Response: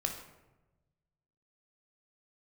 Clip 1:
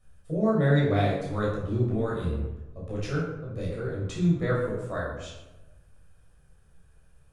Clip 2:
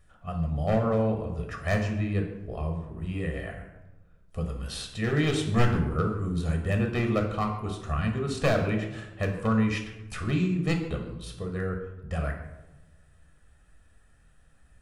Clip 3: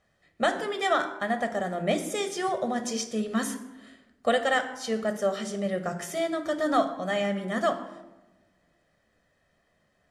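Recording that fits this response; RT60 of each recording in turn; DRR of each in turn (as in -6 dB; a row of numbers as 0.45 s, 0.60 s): 2; 1.1 s, 1.1 s, 1.1 s; -6.5 dB, 2.5 dB, 7.5 dB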